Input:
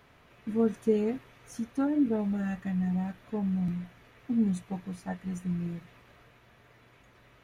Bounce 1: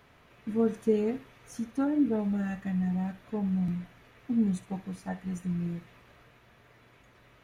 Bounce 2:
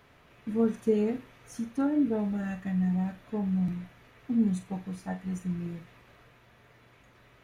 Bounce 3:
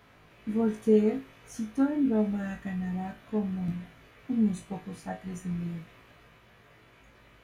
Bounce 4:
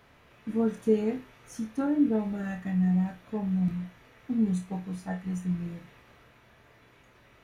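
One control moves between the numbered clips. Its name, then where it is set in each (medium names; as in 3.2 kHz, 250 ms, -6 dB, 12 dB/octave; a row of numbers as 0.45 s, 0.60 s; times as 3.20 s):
flutter echo, walls apart: 11 m, 7.4 m, 3.2 m, 4.7 m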